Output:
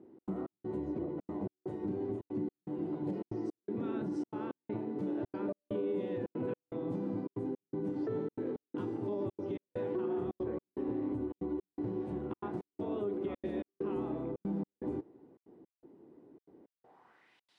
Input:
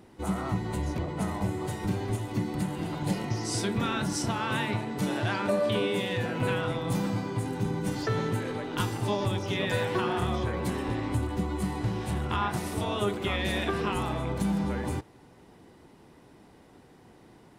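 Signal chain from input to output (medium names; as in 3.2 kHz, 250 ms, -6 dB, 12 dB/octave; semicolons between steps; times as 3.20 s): band-pass sweep 340 Hz -> 3.9 kHz, 16.61–17.49 s; trance gate "xx.xx..xxxx" 163 bpm -60 dB; peak limiter -29.5 dBFS, peak gain reduction 7.5 dB; trim +2 dB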